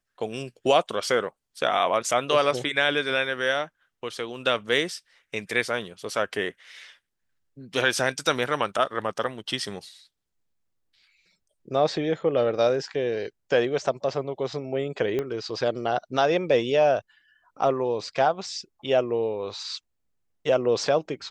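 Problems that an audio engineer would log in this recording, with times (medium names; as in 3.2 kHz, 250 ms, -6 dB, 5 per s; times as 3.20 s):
15.19 s: pop -16 dBFS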